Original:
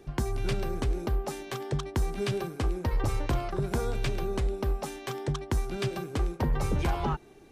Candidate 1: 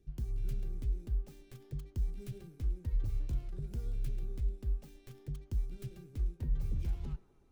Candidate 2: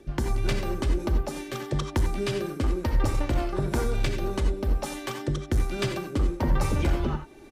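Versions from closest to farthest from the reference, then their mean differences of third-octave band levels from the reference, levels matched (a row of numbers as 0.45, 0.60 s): 2, 1; 3.5, 7.5 dB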